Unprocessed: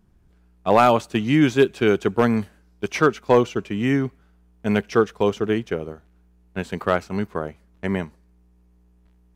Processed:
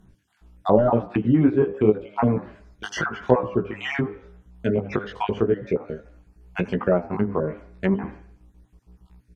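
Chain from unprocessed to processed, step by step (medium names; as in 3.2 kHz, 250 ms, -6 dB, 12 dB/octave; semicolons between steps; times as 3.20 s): random holes in the spectrogram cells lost 39%; de-esser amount 90%; de-hum 100.6 Hz, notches 24; in parallel at -1 dB: compression, threshold -30 dBFS, peak gain reduction 16 dB; on the sum: chorus 0.88 Hz, delay 15.5 ms, depth 4.8 ms; on a send: frequency-shifting echo 81 ms, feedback 33%, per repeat +63 Hz, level -19 dB; on the sum: low-pass that closes with the level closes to 940 Hz, closed at -22.5 dBFS; trim +4 dB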